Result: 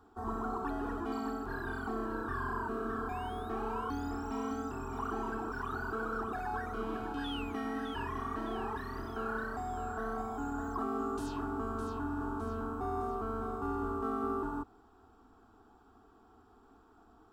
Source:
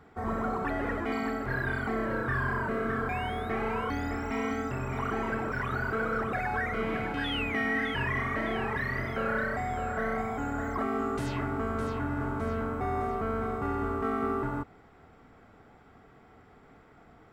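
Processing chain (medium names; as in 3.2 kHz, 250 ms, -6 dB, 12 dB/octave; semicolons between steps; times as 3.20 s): static phaser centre 560 Hz, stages 6; trim -2.5 dB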